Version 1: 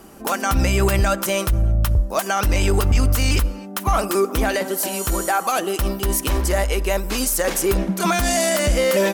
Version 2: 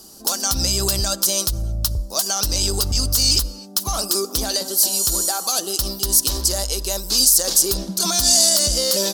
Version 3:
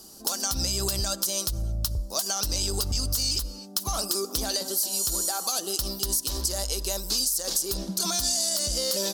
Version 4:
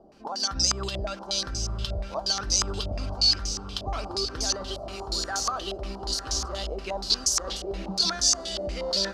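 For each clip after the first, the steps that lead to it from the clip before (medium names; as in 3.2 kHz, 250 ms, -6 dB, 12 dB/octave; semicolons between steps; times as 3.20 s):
resonant high shelf 3.2 kHz +13 dB, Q 3; trim -6.5 dB
compression, threshold -19 dBFS, peak gain reduction 9 dB; trim -4 dB
echo that smears into a reverb 953 ms, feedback 62%, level -8.5 dB; step-sequenced low-pass 8.4 Hz 650–6000 Hz; trim -2.5 dB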